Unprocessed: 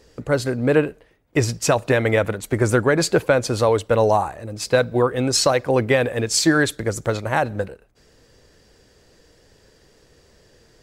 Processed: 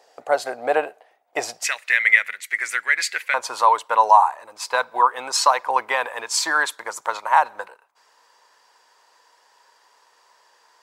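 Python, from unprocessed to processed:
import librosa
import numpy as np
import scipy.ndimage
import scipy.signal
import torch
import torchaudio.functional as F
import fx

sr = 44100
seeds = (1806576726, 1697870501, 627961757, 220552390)

y = fx.highpass_res(x, sr, hz=fx.steps((0.0, 730.0), (1.64, 2000.0), (3.34, 960.0)), q=7.0)
y = y * 10.0 ** (-2.5 / 20.0)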